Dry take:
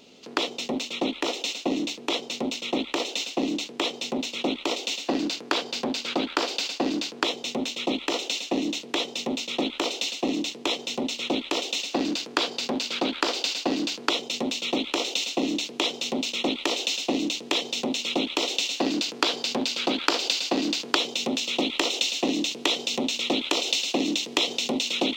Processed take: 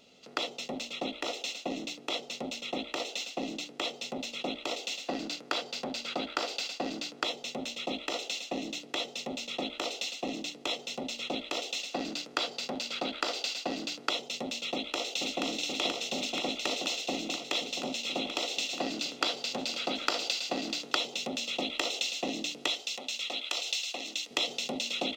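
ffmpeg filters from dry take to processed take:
-filter_complex "[0:a]asplit=2[s0][s1];[s1]afade=t=in:st=14.73:d=0.01,afade=t=out:st=15.43:d=0.01,aecho=0:1:480|960|1440|1920|2400|2880|3360|3840|4320|4800|5280|5760:0.749894|0.63741|0.541799|0.460529|0.391449|0.332732|0.282822|0.240399|0.204339|0.173688|0.147635|0.12549[s2];[s0][s2]amix=inputs=2:normalize=0,asettb=1/sr,asplit=3[s3][s4][s5];[s3]atrim=end=22.684[s6];[s4]atrim=start=22.68:end=24.31,asetpts=PTS-STARTPTS,afade=t=in:d=0.004:c=qsin,afade=t=out:st=1.626:d=0.004:c=qsin,highpass=f=1200:p=1[s7];[s5]atrim=start=24.306[s8];[s6][s7]acrossfade=d=0.004:c1=hsin:c2=qsin[s9];[s9][s8]acrossfade=d=0.004:c1=qsin:c2=hsin,aecho=1:1:1.5:0.41,bandreject=f=58.7:t=h:w=4,bandreject=f=117.4:t=h:w=4,bandreject=f=176.1:t=h:w=4,bandreject=f=234.8:t=h:w=4,bandreject=f=293.5:t=h:w=4,bandreject=f=352.2:t=h:w=4,bandreject=f=410.9:t=h:w=4,bandreject=f=469.6:t=h:w=4,bandreject=f=528.3:t=h:w=4,bandreject=f=587:t=h:w=4,bandreject=f=645.7:t=h:w=4,bandreject=f=704.4:t=h:w=4,bandreject=f=763.1:t=h:w=4,bandreject=f=821.8:t=h:w=4,bandreject=f=880.5:t=h:w=4,bandreject=f=939.2:t=h:w=4,bandreject=f=997.9:t=h:w=4,volume=0.447"

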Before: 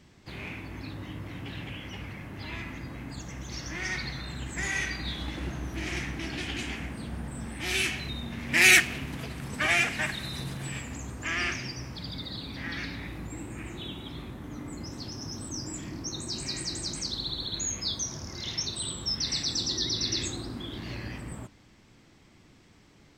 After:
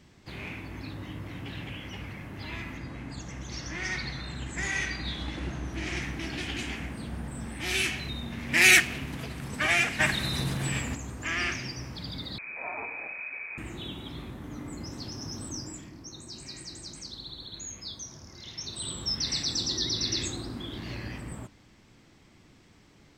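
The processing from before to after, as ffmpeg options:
-filter_complex "[0:a]asettb=1/sr,asplit=3[s0][s1][s2];[s0]atrim=end=2.774[s3];[s1]atrim=start=2.77:end=6.02,asetpts=PTS-STARTPTS,afade=t=in:d=0.004:c=qsin,afade=t=out:st=3.246:d=0.004:c=qsin,lowpass=9200[s4];[s2]atrim=start=6.016[s5];[s3][s4]acrossfade=d=0.004:c1=hsin:c2=qsin[s6];[s6][s5]acrossfade=d=0.004:c1=qsin:c2=hsin,asettb=1/sr,asplit=3[s7][s8][s9];[s7]atrim=end=10.004[s10];[s8]atrim=start=10:end=10.95,asetpts=PTS-STARTPTS,afade=t=in:d=0.004:c=qsin,afade=t=out:st=0.946:d=0.004:c=qsin,acontrast=45[s11];[s9]atrim=start=10.946[s12];[s10][s11]acrossfade=d=0.004:c1=hsin:c2=qsin[s13];[s13][s12]acrossfade=d=0.004:c1=qsin:c2=hsin,asettb=1/sr,asplit=3[s14][s15][s16];[s14]atrim=end=12.384[s17];[s15]atrim=start=12.38:end=13.58,asetpts=PTS-STARTPTS,afade=t=in:d=0.004:c=qsin,afade=t=out:st=1.196:d=0.004:c=qsin,lowpass=f=2200:t=q:w=0.5098,lowpass=f=2200:t=q:w=0.6013,lowpass=f=2200:t=q:w=0.9,lowpass=f=2200:t=q:w=2.563,afreqshift=-2600[s18];[s16]atrim=start=13.576[s19];[s17][s18]acrossfade=d=0.004:c1=hsin:c2=qsin[s20];[s20][s19]acrossfade=d=0.004:c1=qsin:c2=hsin,asplit=3[s21][s22][s23];[s21]atrim=end=15.91,asetpts=PTS-STARTPTS,afade=t=out:st=15.49:d=0.42:silence=0.375837[s24];[s22]atrim=start=15.91:end=18.55,asetpts=PTS-STARTPTS,volume=0.376[s25];[s23]atrim=start=18.55,asetpts=PTS-STARTPTS,afade=t=in:d=0.42:silence=0.375837[s26];[s24][s25][s26]concat=n=3:v=0:a=1"

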